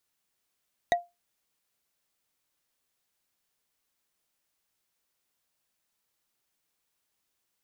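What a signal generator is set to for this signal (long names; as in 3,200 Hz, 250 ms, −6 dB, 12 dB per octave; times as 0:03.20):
struck wood, lowest mode 698 Hz, decay 0.21 s, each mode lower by 4.5 dB, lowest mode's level −16.5 dB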